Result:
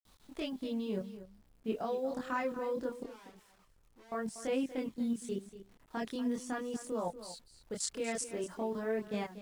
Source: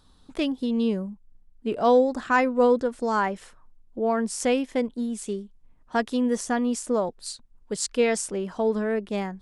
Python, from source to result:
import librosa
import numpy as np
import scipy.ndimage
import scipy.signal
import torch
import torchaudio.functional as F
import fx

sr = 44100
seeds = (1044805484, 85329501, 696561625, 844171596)

p1 = fx.low_shelf(x, sr, hz=110.0, db=-4.0)
p2 = fx.level_steps(p1, sr, step_db=15)
p3 = fx.quant_dither(p2, sr, seeds[0], bits=10, dither='none')
p4 = fx.tube_stage(p3, sr, drive_db=51.0, bias=0.7, at=(3.03, 4.12))
p5 = fx.chorus_voices(p4, sr, voices=2, hz=0.44, base_ms=25, depth_ms=2.5, mix_pct=50)
p6 = p5 + fx.echo_single(p5, sr, ms=239, db=-13.5, dry=0)
y = p6 * librosa.db_to_amplitude(-1.0)